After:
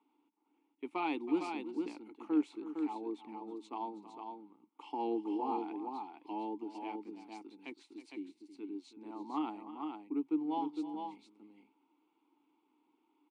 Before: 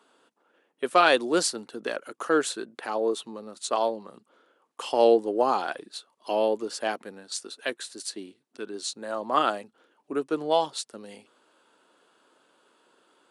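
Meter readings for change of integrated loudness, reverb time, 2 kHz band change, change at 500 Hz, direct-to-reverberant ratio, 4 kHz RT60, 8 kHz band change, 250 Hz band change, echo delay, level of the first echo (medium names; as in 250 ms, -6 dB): -12.5 dB, no reverb, -20.0 dB, -18.0 dB, no reverb, no reverb, under -30 dB, -3.0 dB, 322 ms, -14.5 dB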